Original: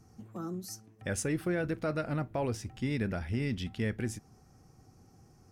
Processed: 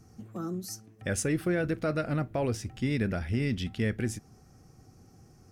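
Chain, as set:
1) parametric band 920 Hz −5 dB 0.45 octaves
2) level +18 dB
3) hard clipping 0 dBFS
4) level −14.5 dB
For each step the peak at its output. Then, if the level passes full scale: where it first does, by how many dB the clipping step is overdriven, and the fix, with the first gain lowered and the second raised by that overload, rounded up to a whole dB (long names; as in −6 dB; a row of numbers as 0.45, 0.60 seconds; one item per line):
−22.0, −4.0, −4.0, −18.5 dBFS
no step passes full scale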